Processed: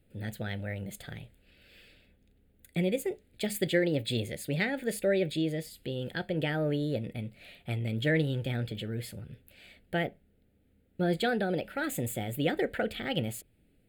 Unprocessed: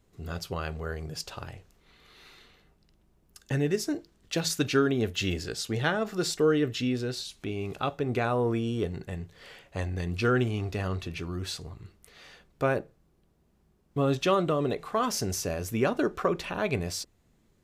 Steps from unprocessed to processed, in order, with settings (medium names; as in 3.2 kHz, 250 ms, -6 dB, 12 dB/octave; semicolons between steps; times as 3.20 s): tape speed +27%; static phaser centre 2.5 kHz, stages 4